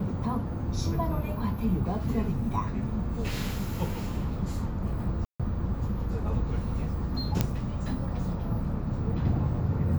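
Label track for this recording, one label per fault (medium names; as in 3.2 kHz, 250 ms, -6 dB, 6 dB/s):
5.250000	5.400000	dropout 146 ms
7.410000	7.410000	pop -9 dBFS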